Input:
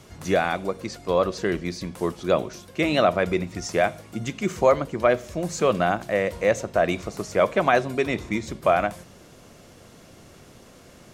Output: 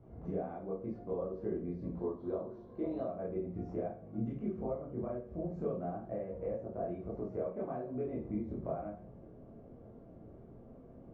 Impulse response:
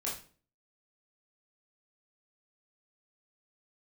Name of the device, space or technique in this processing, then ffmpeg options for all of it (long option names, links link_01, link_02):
television next door: -filter_complex "[0:a]asettb=1/sr,asplit=3[link_01][link_02][link_03];[link_01]atrim=end=1.964[link_04];[link_02]atrim=start=1.96:end=3.04,asetpts=PTS-STARTPTS,afade=type=in:duration=0.004:curve=qsin,afade=type=out:start_time=1.076:duration=0.004:curve=qsin,equalizer=frequency=160:width_type=o:width=0.33:gain=-12,equalizer=frequency=1000:width_type=o:width=0.33:gain=9,equalizer=frequency=2500:width_type=o:width=0.33:gain=-7,equalizer=frequency=4000:width_type=o:width=0.33:gain=11[link_05];[link_03]atrim=start=3.036[link_06];[link_04][link_05]acrossfade=duration=0.004:curve1=hsin:curve2=qsin[link_07];[link_07][link_06]acrossfade=duration=0.004:curve1=qsin:curve2=hsin,acompressor=threshold=-29dB:ratio=6,lowpass=520[link_08];[1:a]atrim=start_sample=2205[link_09];[link_08][link_09]afir=irnorm=-1:irlink=0,volume=-5.5dB"